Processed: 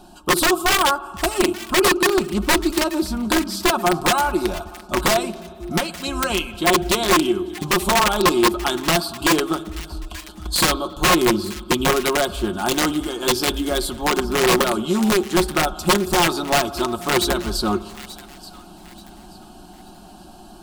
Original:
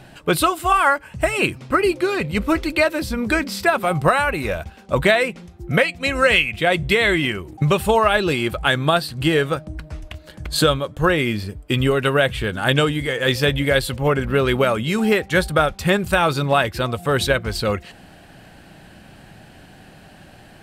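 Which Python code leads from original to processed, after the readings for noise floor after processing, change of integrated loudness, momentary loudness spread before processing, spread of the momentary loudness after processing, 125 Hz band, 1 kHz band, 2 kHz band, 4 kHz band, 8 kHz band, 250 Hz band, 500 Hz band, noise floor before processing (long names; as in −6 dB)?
−43 dBFS, 0.0 dB, 8 LU, 9 LU, −7.0 dB, +1.0 dB, −3.0 dB, +2.5 dB, +9.5 dB, +1.5 dB, −2.0 dB, −46 dBFS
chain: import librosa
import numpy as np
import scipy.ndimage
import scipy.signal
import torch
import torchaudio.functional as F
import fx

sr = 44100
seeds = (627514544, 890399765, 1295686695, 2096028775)

y = fx.peak_eq(x, sr, hz=2300.0, db=-8.0, octaves=0.66)
y = fx.fixed_phaser(y, sr, hz=510.0, stages=6)
y = fx.rider(y, sr, range_db=3, speed_s=2.0)
y = fx.rev_spring(y, sr, rt60_s=2.1, pass_ms=(57,), chirp_ms=30, drr_db=15.0)
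y = fx.dynamic_eq(y, sr, hz=360.0, q=6.3, threshold_db=-39.0, ratio=4.0, max_db=7)
y = (np.mod(10.0 ** (13.5 / 20.0) * y + 1.0, 2.0) - 1.0) / 10.0 ** (13.5 / 20.0)
y = y + 0.46 * np.pad(y, (int(5.6 * sr / 1000.0), 0))[:len(y)]
y = fx.echo_wet_highpass(y, sr, ms=881, feedback_pct=32, hz=1600.0, wet_db=-16.0)
y = fx.doppler_dist(y, sr, depth_ms=0.12)
y = y * 10.0 ** (2.5 / 20.0)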